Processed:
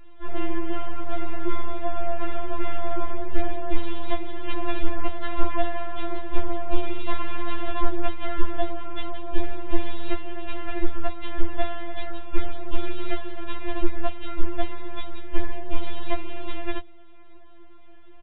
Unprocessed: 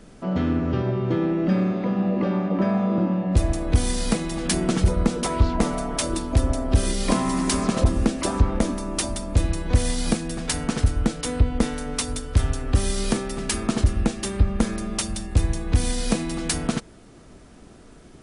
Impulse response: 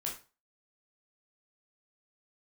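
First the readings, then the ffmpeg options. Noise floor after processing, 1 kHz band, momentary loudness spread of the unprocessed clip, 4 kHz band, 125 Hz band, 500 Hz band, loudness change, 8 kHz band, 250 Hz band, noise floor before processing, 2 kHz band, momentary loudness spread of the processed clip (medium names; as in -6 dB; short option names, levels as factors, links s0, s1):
-39 dBFS, -1.5 dB, 4 LU, -9.0 dB, -13.0 dB, -4.5 dB, -9.5 dB, under -40 dB, -11.0 dB, -47 dBFS, -3.0 dB, 5 LU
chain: -af "aeval=exprs='abs(val(0))':c=same,aresample=8000,aresample=44100,afftfilt=real='re*4*eq(mod(b,16),0)':imag='im*4*eq(mod(b,16),0)':win_size=2048:overlap=0.75"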